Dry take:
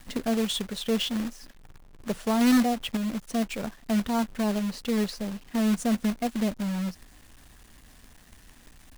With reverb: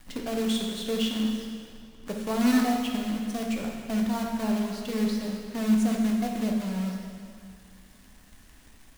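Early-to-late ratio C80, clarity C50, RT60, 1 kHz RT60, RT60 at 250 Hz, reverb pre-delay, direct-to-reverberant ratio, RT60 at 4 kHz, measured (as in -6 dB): 3.5 dB, 2.0 dB, 2.1 s, 2.1 s, 2.3 s, 3 ms, 0.0 dB, 2.0 s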